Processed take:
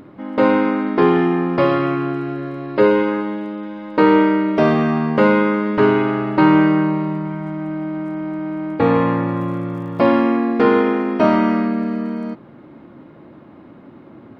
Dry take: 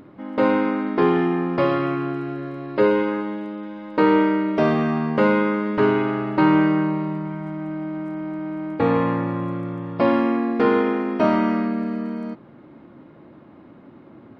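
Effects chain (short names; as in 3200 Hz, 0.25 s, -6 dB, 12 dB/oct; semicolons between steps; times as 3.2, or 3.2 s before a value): 9.28–10.06 crackle 44/s -43 dBFS; gain +4 dB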